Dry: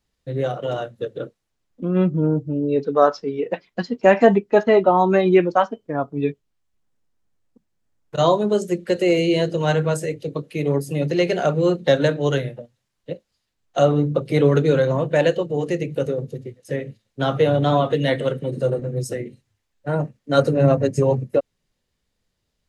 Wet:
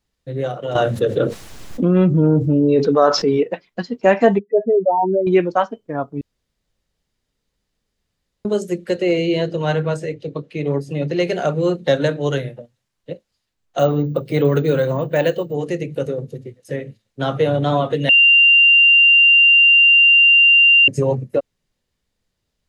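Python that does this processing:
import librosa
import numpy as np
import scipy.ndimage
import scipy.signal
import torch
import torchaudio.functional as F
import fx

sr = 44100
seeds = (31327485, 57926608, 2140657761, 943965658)

y = fx.env_flatten(x, sr, amount_pct=70, at=(0.75, 3.43))
y = fx.spec_expand(y, sr, power=3.9, at=(4.39, 5.27))
y = fx.lowpass(y, sr, hz=5100.0, slope=12, at=(8.96, 11.2))
y = fx.resample_bad(y, sr, factor=2, down='filtered', up='hold', at=(13.79, 15.54))
y = fx.edit(y, sr, fx.room_tone_fill(start_s=6.21, length_s=2.24),
    fx.bleep(start_s=18.09, length_s=2.79, hz=2780.0, db=-7.5), tone=tone)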